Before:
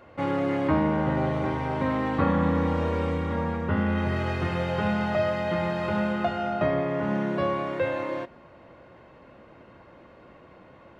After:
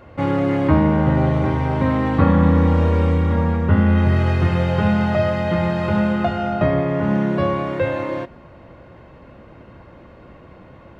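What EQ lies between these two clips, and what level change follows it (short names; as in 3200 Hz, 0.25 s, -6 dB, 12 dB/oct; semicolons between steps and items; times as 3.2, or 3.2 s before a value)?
low shelf 160 Hz +11.5 dB; +4.5 dB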